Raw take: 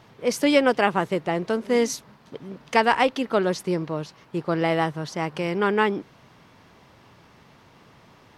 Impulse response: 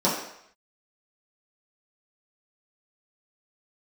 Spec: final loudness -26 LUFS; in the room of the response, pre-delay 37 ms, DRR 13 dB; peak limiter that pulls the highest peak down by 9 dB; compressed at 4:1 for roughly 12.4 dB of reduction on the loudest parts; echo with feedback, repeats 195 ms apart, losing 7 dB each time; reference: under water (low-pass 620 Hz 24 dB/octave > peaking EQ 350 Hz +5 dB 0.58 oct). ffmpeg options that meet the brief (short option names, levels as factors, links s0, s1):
-filter_complex "[0:a]acompressor=threshold=0.0355:ratio=4,alimiter=level_in=1.06:limit=0.0631:level=0:latency=1,volume=0.944,aecho=1:1:195|390|585|780|975:0.447|0.201|0.0905|0.0407|0.0183,asplit=2[s0][s1];[1:a]atrim=start_sample=2205,adelay=37[s2];[s1][s2]afir=irnorm=-1:irlink=0,volume=0.0376[s3];[s0][s3]amix=inputs=2:normalize=0,lowpass=f=620:w=0.5412,lowpass=f=620:w=1.3066,equalizer=f=350:t=o:w=0.58:g=5,volume=2.37"